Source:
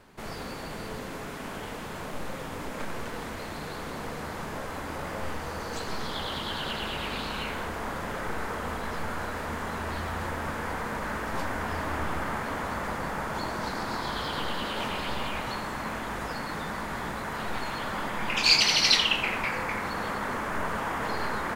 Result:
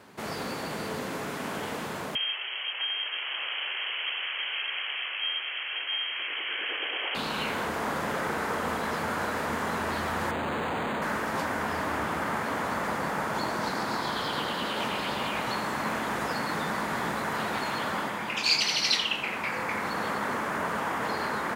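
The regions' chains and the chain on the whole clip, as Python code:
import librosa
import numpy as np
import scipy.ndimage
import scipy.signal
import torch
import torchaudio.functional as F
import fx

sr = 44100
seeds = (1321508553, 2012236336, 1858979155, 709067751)

y = fx.chain(x, sr, fx.freq_invert(carrier_hz=3200),
    fx.highpass(hz=400.0, slope=24), at=(2.15, 7.15))
y = fx.chain(y, sr, fx.highpass(hz=44.0, slope=12),
    fx.schmitt(flips_db=-41.0),
    fx.resample_linear(factor=8), at=(10.31, 11.02))
y = scipy.signal.sosfilt(scipy.signal.butter(2, 130.0, 'highpass', fs=sr, output='sos'), y)
y = fx.rider(y, sr, range_db=4, speed_s=0.5)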